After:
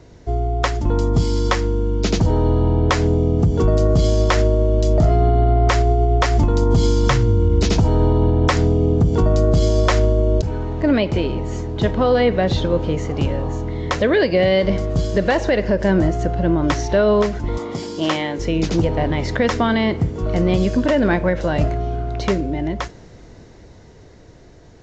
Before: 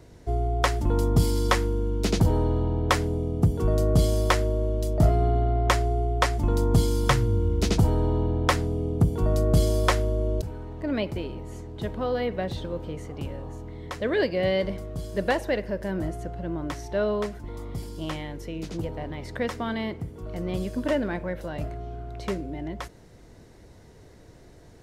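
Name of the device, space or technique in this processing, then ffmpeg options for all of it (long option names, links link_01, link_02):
low-bitrate web radio: -filter_complex "[0:a]asettb=1/sr,asplit=3[link_01][link_02][link_03];[link_01]atrim=end=17.584[link_04];[link_02]atrim=start=17.58:end=18.39,asetpts=PTS-STARTPTS,afade=type=in:duration=0.004:curve=qsin,afade=type=out:start_time=0.806:duration=0.004:curve=qsin,highpass=230[link_05];[link_03]atrim=start=18.386[link_06];[link_04][link_05]acrossfade=duration=0.004:curve1=hsin:curve2=qsin[link_07];[link_07][link_06]acrossfade=duration=0.004:curve1=qsin:curve2=hsin,dynaudnorm=framelen=530:gausssize=11:maxgain=11dB,alimiter=limit=-12.5dB:level=0:latency=1:release=141,volume=5dB" -ar 16000 -c:a aac -b:a 48k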